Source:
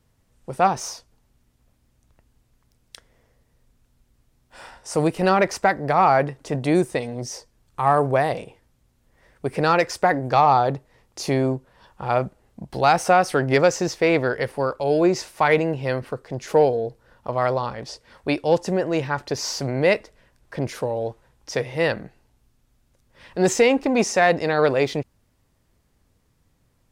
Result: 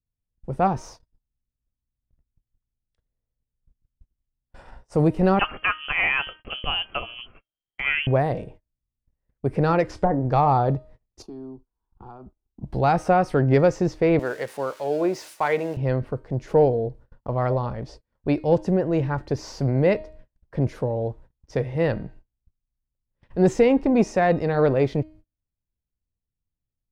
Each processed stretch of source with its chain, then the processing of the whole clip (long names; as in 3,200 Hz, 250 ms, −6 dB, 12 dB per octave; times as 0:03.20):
0:05.39–0:08.07: parametric band 2,500 Hz +9 dB 1.7 octaves + notch filter 2,300 Hz, Q 25 + voice inversion scrambler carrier 3,200 Hz
0:09.85–0:10.25: variable-slope delta modulation 64 kbit/s + treble cut that deepens with the level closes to 960 Hz, closed at −16 dBFS + double-tracking delay 26 ms −13.5 dB
0:11.22–0:12.63: high-shelf EQ 7,000 Hz −9 dB + downward compressor 4 to 1, threshold −35 dBFS + phaser with its sweep stopped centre 560 Hz, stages 6
0:14.19–0:15.77: spike at every zero crossing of −23 dBFS + meter weighting curve A
whole clip: spectral tilt −3.5 dB per octave; hum removal 311.3 Hz, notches 16; noise gate −39 dBFS, range −30 dB; level −4.5 dB